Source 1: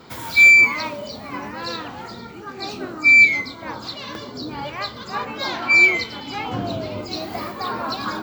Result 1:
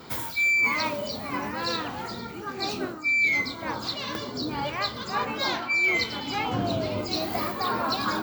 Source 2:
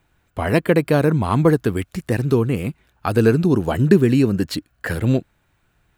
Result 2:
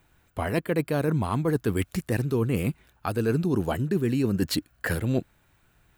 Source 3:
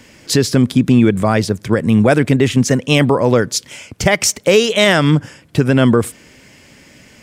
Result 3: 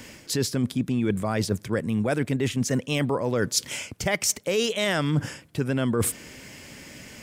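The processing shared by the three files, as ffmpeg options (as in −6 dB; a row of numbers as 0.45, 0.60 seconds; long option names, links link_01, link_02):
-af "highshelf=frequency=9900:gain=7.5,areverse,acompressor=threshold=-21dB:ratio=12,areverse"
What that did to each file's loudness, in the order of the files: −12.0, −8.0, −12.0 LU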